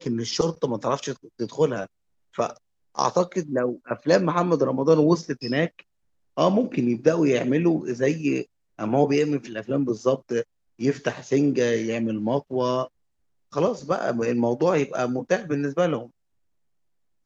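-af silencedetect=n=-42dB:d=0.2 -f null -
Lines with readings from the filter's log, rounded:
silence_start: 1.86
silence_end: 2.35 | silence_duration: 0.49
silence_start: 2.56
silence_end: 2.95 | silence_duration: 0.39
silence_start: 5.81
silence_end: 6.37 | silence_duration: 0.57
silence_start: 8.44
silence_end: 8.79 | silence_duration: 0.35
silence_start: 10.43
silence_end: 10.79 | silence_duration: 0.36
silence_start: 12.87
silence_end: 13.52 | silence_duration: 0.65
silence_start: 16.07
silence_end: 17.26 | silence_duration: 1.19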